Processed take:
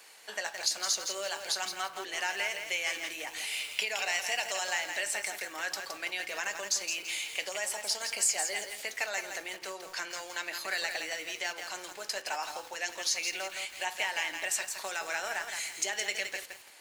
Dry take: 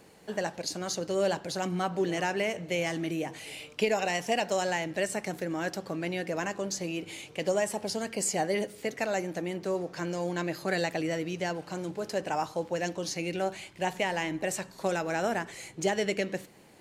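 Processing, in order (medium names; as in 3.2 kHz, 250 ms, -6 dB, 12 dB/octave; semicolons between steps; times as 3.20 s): compression 2.5:1, threshold -33 dBFS, peak gain reduction 8 dB; Bessel high-pass 1.6 kHz, order 2; on a send at -10 dB: reverberation RT60 0.35 s, pre-delay 3 ms; on the sum: bit-crushed delay 167 ms, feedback 35%, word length 9-bit, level -6 dB; trim +8 dB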